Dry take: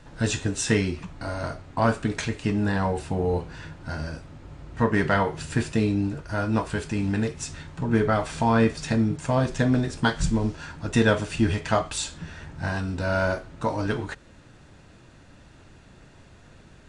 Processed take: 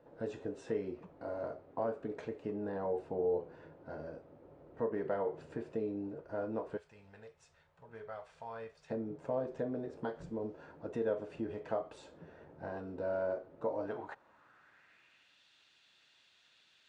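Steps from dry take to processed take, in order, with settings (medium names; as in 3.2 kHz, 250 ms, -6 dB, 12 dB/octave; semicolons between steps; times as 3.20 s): 6.77–8.90 s: amplifier tone stack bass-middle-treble 10-0-10; compression 3:1, threshold -24 dBFS, peak gain reduction 7.5 dB; band-pass sweep 490 Hz -> 3.5 kHz, 13.69–15.39 s; trim -1.5 dB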